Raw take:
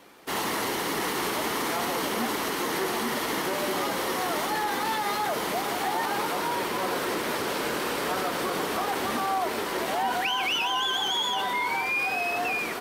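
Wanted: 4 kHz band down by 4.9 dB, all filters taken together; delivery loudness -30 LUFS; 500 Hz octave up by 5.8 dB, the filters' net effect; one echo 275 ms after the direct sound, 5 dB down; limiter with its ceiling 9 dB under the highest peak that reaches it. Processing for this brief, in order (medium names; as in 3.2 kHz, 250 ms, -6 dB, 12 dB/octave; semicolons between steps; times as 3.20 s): peaking EQ 500 Hz +7.5 dB; peaking EQ 4 kHz -7 dB; peak limiter -23 dBFS; delay 275 ms -5 dB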